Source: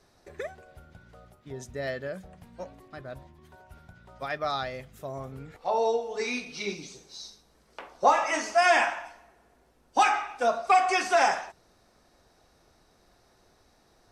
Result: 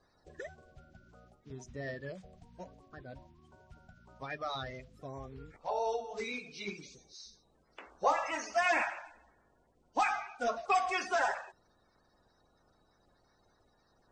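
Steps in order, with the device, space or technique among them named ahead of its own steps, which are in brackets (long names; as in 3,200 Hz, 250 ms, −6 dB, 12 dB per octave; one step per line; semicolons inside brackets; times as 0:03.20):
clip after many re-uploads (low-pass filter 7,600 Hz 24 dB per octave; spectral magnitudes quantised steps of 30 dB)
low-shelf EQ 110 Hz +5.5 dB
level −7.5 dB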